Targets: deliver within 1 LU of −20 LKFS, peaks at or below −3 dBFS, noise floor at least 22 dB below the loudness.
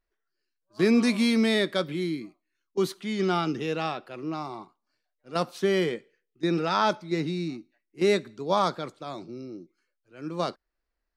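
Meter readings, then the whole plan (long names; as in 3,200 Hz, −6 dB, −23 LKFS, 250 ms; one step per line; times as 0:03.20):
integrated loudness −27.0 LKFS; sample peak −10.5 dBFS; target loudness −20.0 LKFS
→ level +7 dB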